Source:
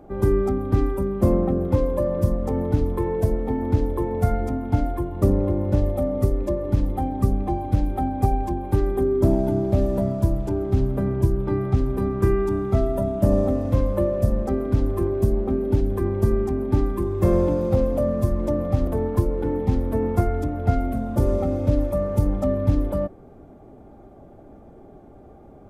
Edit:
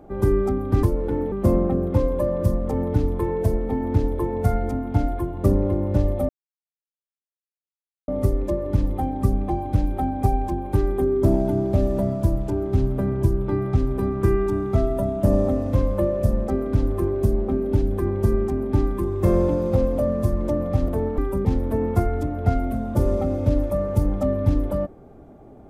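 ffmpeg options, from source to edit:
-filter_complex "[0:a]asplit=6[s0][s1][s2][s3][s4][s5];[s0]atrim=end=0.832[s6];[s1]atrim=start=19.168:end=19.662[s7];[s2]atrim=start=1.098:end=6.07,asetpts=PTS-STARTPTS,afade=t=out:st=4.968:d=0.004:c=hsin,apad=pad_dur=1.79[s8];[s3]atrim=start=6.07:end=19.172,asetpts=PTS-STARTPTS,afade=t=in:d=0.004:c=hsin[s9];[s4]atrim=start=0.828:end=1.102[s10];[s5]atrim=start=19.658[s11];[s6][s7]acrossfade=d=0.004:c1=hsin:c2=hsin[s12];[s8][s9]concat=n=2:v=0:a=1[s13];[s12][s13]acrossfade=d=0.004:c1=hsin:c2=hsin[s14];[s14][s10]acrossfade=d=0.004:c1=hsin:c2=hsin[s15];[s15][s11]acrossfade=d=0.004:c1=hsin:c2=hsin"

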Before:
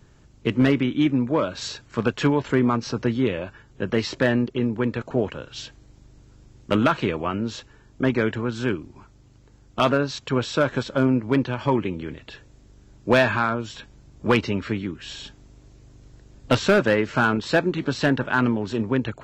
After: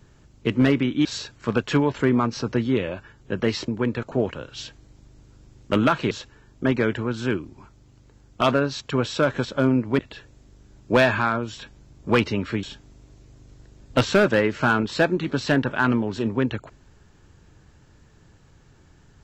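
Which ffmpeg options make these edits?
-filter_complex "[0:a]asplit=6[s0][s1][s2][s3][s4][s5];[s0]atrim=end=1.052[s6];[s1]atrim=start=1.548:end=4.182[s7];[s2]atrim=start=4.668:end=7.102[s8];[s3]atrim=start=7.488:end=11.372[s9];[s4]atrim=start=12.158:end=14.802[s10];[s5]atrim=start=15.168[s11];[s6][s7]acrossfade=d=0.004:c1=hsin:c2=hsin[s12];[s12][s8]acrossfade=d=0.004:c1=hsin:c2=hsin[s13];[s13][s9]acrossfade=d=0.004:c1=hsin:c2=hsin[s14];[s14][s10]acrossfade=d=0.004:c1=hsin:c2=hsin[s15];[s15][s11]acrossfade=d=0.004:c1=hsin:c2=hsin"

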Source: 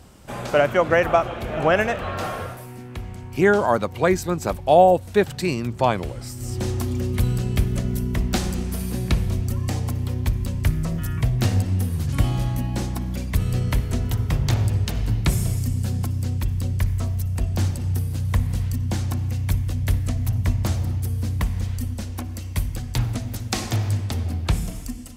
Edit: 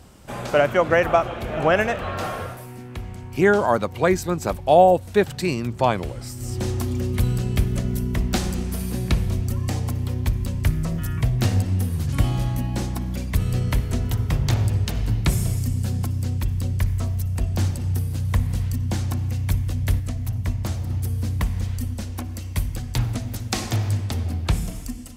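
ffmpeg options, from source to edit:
-filter_complex "[0:a]asplit=3[s0][s1][s2];[s0]atrim=end=20.002[s3];[s1]atrim=start=19.998:end=20.902,asetpts=PTS-STARTPTS,volume=0.668[s4];[s2]atrim=start=20.898[s5];[s3][s4]acrossfade=d=0.004:c1=hsin:c2=hsin[s6];[s6][s5]acrossfade=d=0.004:c1=hsin:c2=hsin"

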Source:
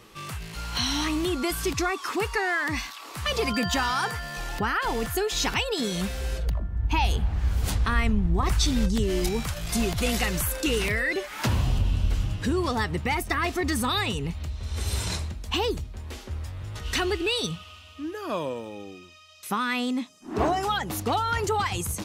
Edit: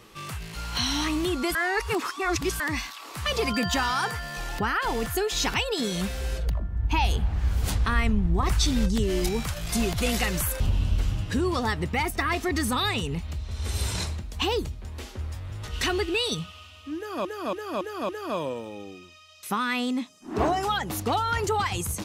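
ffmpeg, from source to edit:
-filter_complex "[0:a]asplit=8[s0][s1][s2][s3][s4][s5][s6][s7];[s0]atrim=end=1.552[s8];[s1]atrim=start=1.548:end=2.602,asetpts=PTS-STARTPTS,areverse[s9];[s2]atrim=start=2.598:end=10.602[s10];[s3]atrim=start=11.718:end=18.372[s11];[s4]atrim=start=18.088:end=18.372[s12];[s5]atrim=start=18.088:end=18.372[s13];[s6]atrim=start=18.088:end=18.372[s14];[s7]atrim=start=18.088[s15];[s8][s9]acrossfade=d=0.004:c1=hsin:c2=hsin[s16];[s16][s10]acrossfade=d=0.004:c1=hsin:c2=hsin[s17];[s17][s11]acrossfade=d=0.004:c1=hsin:c2=hsin[s18];[s18][s12]acrossfade=d=0.004:c1=hsin:c2=hsin[s19];[s19][s13]acrossfade=d=0.004:c1=hsin:c2=hsin[s20];[s20][s14]acrossfade=d=0.004:c1=hsin:c2=hsin[s21];[s21][s15]acrossfade=d=0.004:c1=hsin:c2=hsin"

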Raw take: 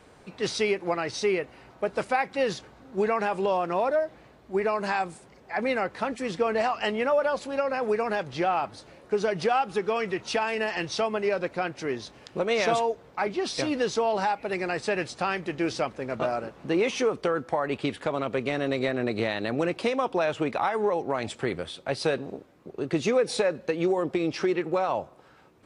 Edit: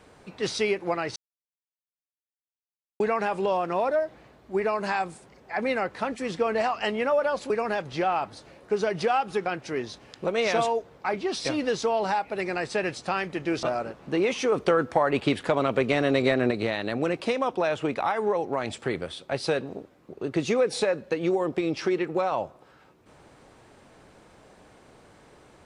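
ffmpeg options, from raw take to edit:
-filter_complex "[0:a]asplit=8[s0][s1][s2][s3][s4][s5][s6][s7];[s0]atrim=end=1.16,asetpts=PTS-STARTPTS,afade=t=out:st=1.156:d=0.004:c=hsin[s8];[s1]atrim=start=1.16:end=3,asetpts=PTS-STARTPTS,volume=0[s9];[s2]atrim=start=3:end=7.502,asetpts=PTS-STARTPTS,afade=t=in:d=0.004:c=hsin[s10];[s3]atrim=start=7.908:end=9.872[s11];[s4]atrim=start=11.588:end=15.762[s12];[s5]atrim=start=16.198:end=17.092[s13];[s6]atrim=start=17.088:end=19.082,asetpts=PTS-STARTPTS,volume=1.68[s14];[s7]atrim=start=19.078[s15];[s8][s9][s10]concat=n=3:v=0:a=1[s16];[s16][s11]acrossfade=d=0.004:c1=hsin:c2=hsin[s17];[s17][s12]acrossfade=d=0.004:c1=hsin:c2=hsin[s18];[s18][s13]acrossfade=d=0.004:c1=hsin:c2=hsin[s19];[s19][s14]acrossfade=d=0.004:c1=hsin:c2=hsin[s20];[s20][s15]acrossfade=d=0.004:c1=hsin:c2=hsin"

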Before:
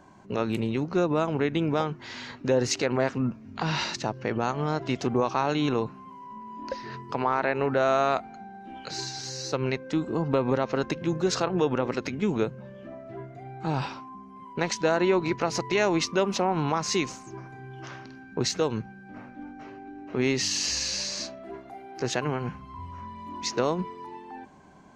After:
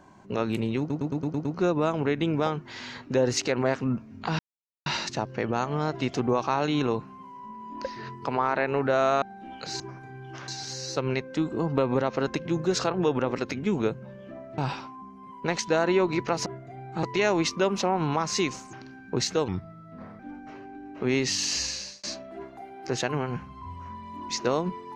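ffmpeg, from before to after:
-filter_complex "[0:a]asplit=18[s0][s1][s2][s3][s4][s5][s6][s7][s8][s9][s10][s11][s12][s13][s14][s15][s16][s17];[s0]atrim=end=0.902[s18];[s1]atrim=start=0.788:end=0.902[s19];[s2]atrim=start=0.788:end=0.902[s20];[s3]atrim=start=0.788:end=0.902[s21];[s4]atrim=start=0.788:end=0.902[s22];[s5]atrim=start=0.788:end=0.902[s23];[s6]atrim=start=0.788:end=3.73,asetpts=PTS-STARTPTS,afade=t=out:st=2.938:d=0.004:c=hsin,apad=pad_dur=0.47[s24];[s7]atrim=start=3.73:end=8.092,asetpts=PTS-STARTPTS,afade=t=in:d=0.004:c=hsin[s25];[s8]atrim=start=8.458:end=9.042[s26];[s9]atrim=start=17.288:end=17.972[s27];[s10]atrim=start=9.038:end=13.142[s28];[s11]atrim=start=13.708:end=15.592[s29];[s12]atrim=start=13.138:end=13.712[s30];[s13]atrim=start=15.588:end=17.292[s31];[s14]atrim=start=17.968:end=18.724[s32];[s15]atrim=start=18.72:end=19.32,asetpts=PTS-STARTPTS,asetrate=37044,aresample=44100[s33];[s16]atrim=start=19.316:end=21.16,asetpts=PTS-STARTPTS,afade=t=out:st=1.394:d=0.45[s34];[s17]atrim=start=21.16,asetpts=PTS-STARTPTS,afade=t=in:d=0.004:c=hsin[s35];[s18][s19]acrossfade=d=0.004:c1=hsin:c2=hsin[s36];[s36][s20]acrossfade=d=0.004:c1=hsin:c2=hsin[s37];[s37][s21]acrossfade=d=0.004:c1=hsin:c2=hsin[s38];[s38][s22]acrossfade=d=0.004:c1=hsin:c2=hsin[s39];[s39][s23]acrossfade=d=0.004:c1=hsin:c2=hsin[s40];[s24][s25]concat=n=2:v=0:a=1[s41];[s40][s41]acrossfade=d=0.004:c1=hsin:c2=hsin[s42];[s42][s26]acrossfade=d=0.004:c1=hsin:c2=hsin[s43];[s43][s27]acrossfade=d=0.004:c1=hsin:c2=hsin[s44];[s44][s28]acrossfade=d=0.004:c1=hsin:c2=hsin[s45];[s45][s29]acrossfade=d=0.004:c1=hsin:c2=hsin[s46];[s46][s30]acrossfade=d=0.004:c1=hsin:c2=hsin[s47];[s47][s31]acrossfade=d=0.004:c1=hsin:c2=hsin[s48];[s48][s32]acrossfade=d=0.004:c1=hsin:c2=hsin[s49];[s49][s33]acrossfade=d=0.004:c1=hsin:c2=hsin[s50];[s34][s35]concat=n=2:v=0:a=1[s51];[s50][s51]acrossfade=d=0.004:c1=hsin:c2=hsin"

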